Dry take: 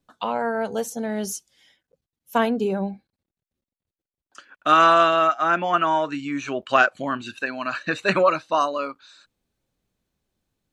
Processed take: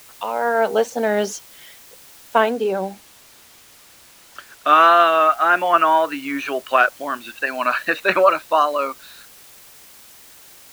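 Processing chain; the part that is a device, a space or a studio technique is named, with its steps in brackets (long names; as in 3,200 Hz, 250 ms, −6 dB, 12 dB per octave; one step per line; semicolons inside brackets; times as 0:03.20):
dictaphone (band-pass filter 390–3,600 Hz; automatic gain control gain up to 15 dB; tape wow and flutter; white noise bed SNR 25 dB)
0:02.50–0:04.67: high-shelf EQ 9,700 Hz −6 dB
level −1 dB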